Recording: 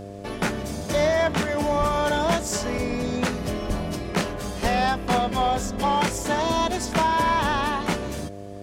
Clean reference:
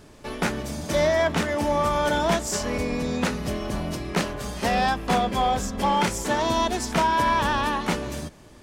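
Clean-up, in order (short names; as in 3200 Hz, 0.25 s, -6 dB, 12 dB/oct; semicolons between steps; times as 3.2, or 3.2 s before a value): de-hum 99.7 Hz, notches 7; 1.79–1.91 HPF 140 Hz 24 dB/oct; 3.67–3.79 HPF 140 Hz 24 dB/oct; 4.62–4.74 HPF 140 Hz 24 dB/oct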